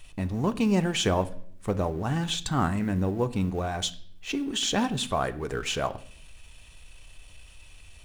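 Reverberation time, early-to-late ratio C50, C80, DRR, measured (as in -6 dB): 0.60 s, 17.5 dB, 20.5 dB, 10.0 dB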